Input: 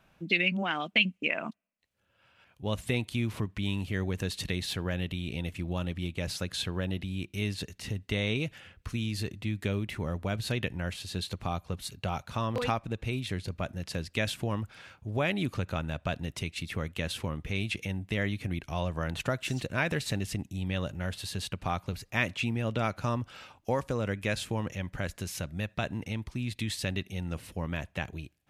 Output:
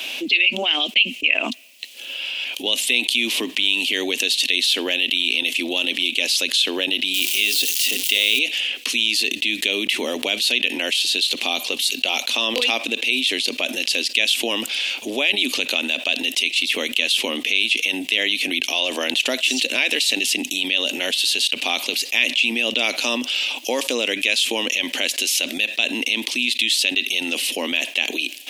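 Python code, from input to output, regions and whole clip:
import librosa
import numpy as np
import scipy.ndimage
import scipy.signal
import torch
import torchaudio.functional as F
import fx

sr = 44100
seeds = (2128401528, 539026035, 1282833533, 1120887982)

y = fx.chain(x, sr, fx.crossing_spikes(level_db=-32.0),
    fx.hum_notches(base_hz=60, count=9), at=(7.14, 8.39))
y = scipy.signal.sosfilt(scipy.signal.ellip(4, 1.0, 40, 250.0, 'highpass', fs=sr, output='sos'), y)
y = fx.high_shelf_res(y, sr, hz=2000.0, db=13.0, q=3.0)
y = fx.env_flatten(y, sr, amount_pct=70)
y = F.gain(torch.from_numpy(y), -9.5).numpy()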